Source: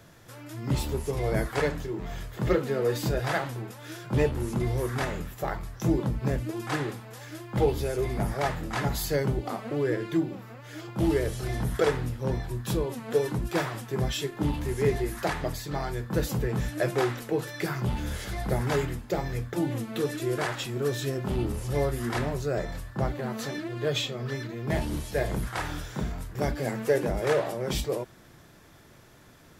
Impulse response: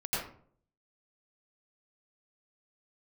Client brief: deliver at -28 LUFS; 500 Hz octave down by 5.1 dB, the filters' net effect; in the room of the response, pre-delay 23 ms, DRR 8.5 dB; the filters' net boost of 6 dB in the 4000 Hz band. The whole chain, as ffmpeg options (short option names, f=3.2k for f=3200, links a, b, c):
-filter_complex "[0:a]equalizer=f=500:t=o:g=-6.5,equalizer=f=4k:t=o:g=7.5,asplit=2[a][b];[1:a]atrim=start_sample=2205,adelay=23[c];[b][c]afir=irnorm=-1:irlink=0,volume=-15dB[d];[a][d]amix=inputs=2:normalize=0,volume=2dB"